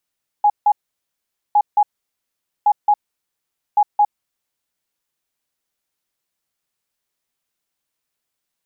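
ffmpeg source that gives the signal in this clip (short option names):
-f lavfi -i "aevalsrc='0.335*sin(2*PI*831*t)*clip(min(mod(mod(t,1.11),0.22),0.06-mod(mod(t,1.11),0.22))/0.005,0,1)*lt(mod(t,1.11),0.44)':d=4.44:s=44100"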